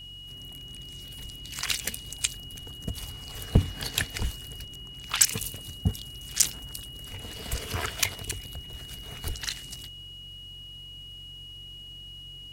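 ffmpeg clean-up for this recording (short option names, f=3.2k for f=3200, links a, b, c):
-af "bandreject=f=46.1:t=h:w=4,bandreject=f=92.2:t=h:w=4,bandreject=f=138.3:t=h:w=4,bandreject=f=2.9k:w=30"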